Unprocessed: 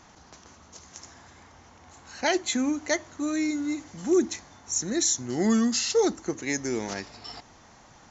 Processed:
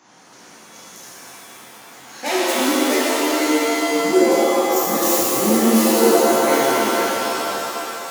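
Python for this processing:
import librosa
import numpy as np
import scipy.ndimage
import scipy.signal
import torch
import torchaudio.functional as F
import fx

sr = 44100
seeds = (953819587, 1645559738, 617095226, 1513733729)

y = fx.self_delay(x, sr, depth_ms=0.16)
y = scipy.signal.sosfilt(scipy.signal.bessel(8, 200.0, 'highpass', norm='mag', fs=sr, output='sos'), y)
y = fx.rev_shimmer(y, sr, seeds[0], rt60_s=3.0, semitones=7, shimmer_db=-2, drr_db=-9.0)
y = F.gain(torch.from_numpy(y), -1.5).numpy()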